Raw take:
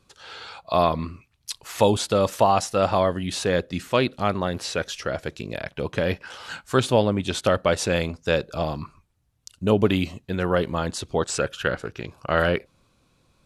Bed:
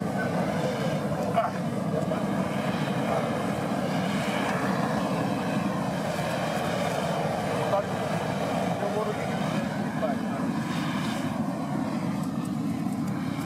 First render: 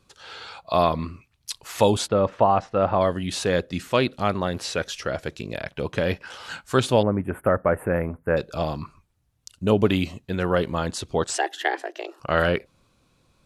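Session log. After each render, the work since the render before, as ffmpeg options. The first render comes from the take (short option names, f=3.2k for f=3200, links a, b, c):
-filter_complex "[0:a]asettb=1/sr,asplit=3[a][b][c];[a]atrim=end=2.084[d];[b]atrim=start=2.08:end=3.01,asetpts=PTS-STARTPTS,afade=t=in:d=0.004:c=qsin,afade=t=out:st=0.926:d=0.004:c=qsin,lowpass=1.8k[e];[c]atrim=start=3.006[f];[d][e]acrossfade=d=0.004:c1=hsin:c2=qsin[g];[g][f]acrossfade=d=0.004:c1=qsin:c2=hsin,asettb=1/sr,asplit=3[h][i][j];[h]atrim=end=7.034[k];[i]atrim=start=7.03:end=8.37,asetpts=PTS-STARTPTS,afade=t=in:d=0.004:c=qsin,afade=t=out:st=1.336:d=0.004:c=qsin,asuperstop=centerf=4900:order=8:qfactor=0.55[l];[j]atrim=start=8.366[m];[k][l]acrossfade=d=0.004:c1=hsin:c2=qsin[n];[n][m]acrossfade=d=0.004:c1=qsin:c2=hsin,asettb=1/sr,asplit=3[o][p][q];[o]atrim=end=11.334[r];[p]atrim=start=11.33:end=12.2,asetpts=PTS-STARTPTS,afade=t=in:d=0.004:c=qsin,afade=t=out:st=0.866:d=0.004:c=qsin,afreqshift=250[s];[q]atrim=start=12.196[t];[r][s]acrossfade=d=0.004:c1=hsin:c2=qsin[u];[u][t]acrossfade=d=0.004:c1=qsin:c2=hsin"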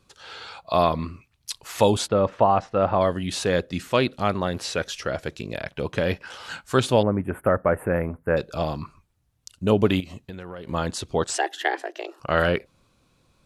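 -filter_complex "[0:a]asettb=1/sr,asplit=3[a][b][c];[a]atrim=end=10.004[d];[b]atrim=start=10:end=10.69,asetpts=PTS-STARTPTS,afade=t=in:d=0.004:c=qsin,afade=t=out:st=0.686:d=0.004:c=qsin,acompressor=threshold=-32dB:ratio=16:attack=3.2:release=140:knee=1:detection=peak[e];[c]atrim=start=10.686[f];[d][e]acrossfade=d=0.004:c1=hsin:c2=qsin[g];[g][f]acrossfade=d=0.004:c1=qsin:c2=hsin"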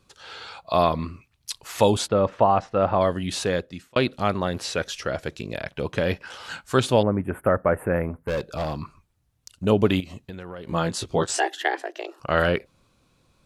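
-filter_complex "[0:a]asettb=1/sr,asplit=3[a][b][c];[a]atrim=end=8.204[d];[b]atrim=start=8.2:end=9.65,asetpts=PTS-STARTPTS,afade=t=in:d=0.004:c=qsin,afade=t=out:st=1.446:d=0.004:c=qsin,volume=22.5dB,asoftclip=hard,volume=-22.5dB[e];[c]atrim=start=9.646[f];[d][e]acrossfade=d=0.004:c1=hsin:c2=qsin[g];[g][f]acrossfade=d=0.004:c1=qsin:c2=hsin,asettb=1/sr,asplit=3[h][i][j];[h]atrim=end=10.694[k];[i]atrim=start=10.69:end=11.55,asetpts=PTS-STARTPTS,afade=t=in:d=0.004:c=qsin,afade=t=out:st=0.856:d=0.004:c=qsin,asplit=2[l][m];[m]adelay=18,volume=-4dB[n];[l][n]amix=inputs=2:normalize=0,atrim=end_sample=37926[o];[j]atrim=start=11.546[p];[k][o]acrossfade=d=0.004:c1=hsin:c2=qsin[q];[q][p]acrossfade=d=0.004:c1=qsin:c2=hsin,asplit=2[r][s];[r]atrim=end=3.96,asetpts=PTS-STARTPTS,afade=t=out:st=3.41:d=0.55[t];[s]atrim=start=3.96,asetpts=PTS-STARTPTS,afade=t=in:d=0.004:c=hsin[u];[t][u]concat=n=2:v=0:a=1"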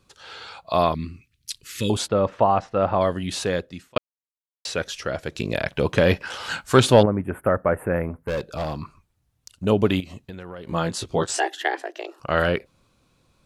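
-filter_complex "[0:a]asettb=1/sr,asplit=3[a][b][c];[a]atrim=end=0.944[d];[b]atrim=start=0.94:end=1.9,asetpts=PTS-STARTPTS,afade=t=in:d=0.004:c=qsin,afade=t=out:st=0.956:d=0.004:c=qsin,asuperstop=centerf=780:order=4:qfactor=0.54[e];[c]atrim=start=1.896[f];[d][e]acrossfade=d=0.004:c1=hsin:c2=qsin[g];[g][f]acrossfade=d=0.004:c1=qsin:c2=hsin,asettb=1/sr,asplit=3[h][i][j];[h]atrim=end=5.354[k];[i]atrim=start=5.35:end=7.06,asetpts=PTS-STARTPTS,afade=t=in:d=0.004:c=qsin,afade=t=out:st=1.706:d=0.004:c=qsin,acontrast=63[l];[j]atrim=start=7.056[m];[k][l]acrossfade=d=0.004:c1=hsin:c2=qsin[n];[n][m]acrossfade=d=0.004:c1=qsin:c2=hsin,asplit=3[o][p][q];[o]atrim=end=3.98,asetpts=PTS-STARTPTS,afade=t=out:st=3.976:d=0.004:c=hsin[r];[p]atrim=start=3.98:end=4.65,asetpts=PTS-STARTPTS,volume=0[s];[q]atrim=start=4.65,asetpts=PTS-STARTPTS,afade=t=in:d=0.004:c=hsin[t];[r][s][t]concat=n=3:v=0:a=1"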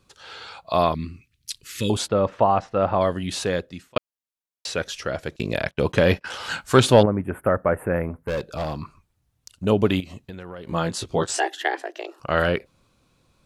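-filter_complex "[0:a]asettb=1/sr,asplit=3[a][b][c];[a]atrim=end=5.364[d];[b]atrim=start=5.36:end=6.26,asetpts=PTS-STARTPTS,afade=t=in:d=0.004:c=qsin,afade=t=out:st=0.896:d=0.004:c=qsin,agate=range=-23dB:threshold=-35dB:ratio=16:release=100:detection=peak[e];[c]atrim=start=6.256[f];[d][e]acrossfade=d=0.004:c1=hsin:c2=qsin[g];[g][f]acrossfade=d=0.004:c1=qsin:c2=hsin"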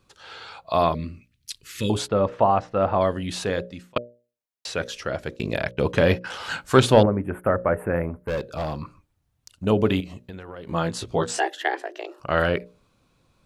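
-af "equalizer=f=9.2k:w=0.32:g=-3.5,bandreject=f=60:t=h:w=6,bandreject=f=120:t=h:w=6,bandreject=f=180:t=h:w=6,bandreject=f=240:t=h:w=6,bandreject=f=300:t=h:w=6,bandreject=f=360:t=h:w=6,bandreject=f=420:t=h:w=6,bandreject=f=480:t=h:w=6,bandreject=f=540:t=h:w=6,bandreject=f=600:t=h:w=6"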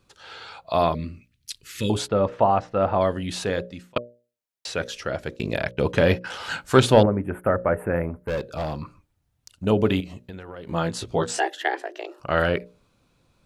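-af "bandreject=f=1.1k:w=20"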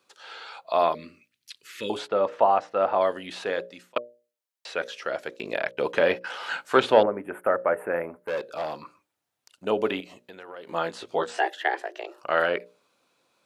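-filter_complex "[0:a]highpass=430,acrossover=split=3500[a][b];[b]acompressor=threshold=-48dB:ratio=4:attack=1:release=60[c];[a][c]amix=inputs=2:normalize=0"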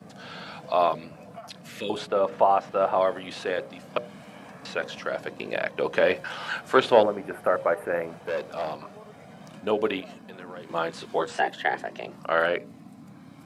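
-filter_complex "[1:a]volume=-18dB[a];[0:a][a]amix=inputs=2:normalize=0"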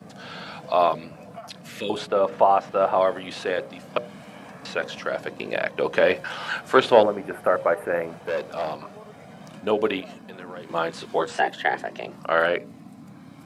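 -af "volume=2.5dB"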